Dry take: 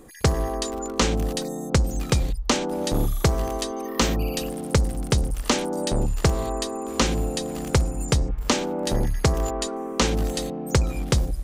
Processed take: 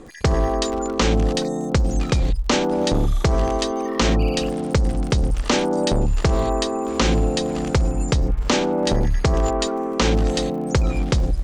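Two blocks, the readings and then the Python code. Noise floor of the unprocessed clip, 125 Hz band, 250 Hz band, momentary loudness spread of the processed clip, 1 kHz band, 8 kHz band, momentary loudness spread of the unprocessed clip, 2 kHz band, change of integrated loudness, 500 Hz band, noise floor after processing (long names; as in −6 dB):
−33 dBFS, +3.0 dB, +4.5 dB, 4 LU, +4.5 dB, −1.0 dB, 5 LU, +3.0 dB, +3.5 dB, +5.0 dB, −26 dBFS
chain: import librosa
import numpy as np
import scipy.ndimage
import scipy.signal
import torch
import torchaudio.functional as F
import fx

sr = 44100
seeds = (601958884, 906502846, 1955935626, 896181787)

p1 = scipy.signal.sosfilt(scipy.signal.bessel(4, 5600.0, 'lowpass', norm='mag', fs=sr, output='sos'), x)
p2 = fx.over_compress(p1, sr, threshold_db=-23.0, ratio=-0.5)
p3 = p1 + (p2 * librosa.db_to_amplitude(-1.0))
y = fx.dmg_crackle(p3, sr, seeds[0], per_s=47.0, level_db=-35.0)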